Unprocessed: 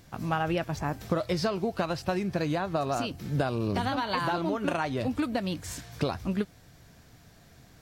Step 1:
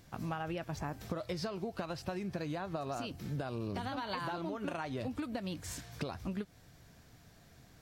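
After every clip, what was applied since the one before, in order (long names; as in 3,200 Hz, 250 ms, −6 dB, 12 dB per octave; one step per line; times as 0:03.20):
downward compressor, threshold −30 dBFS, peak gain reduction 8.5 dB
level −4.5 dB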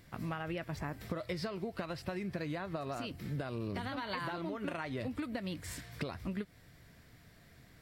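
thirty-one-band graphic EQ 800 Hz −5 dB, 2,000 Hz +7 dB, 6,300 Hz −7 dB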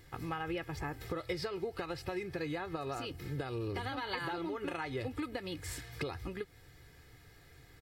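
comb filter 2.4 ms, depth 70%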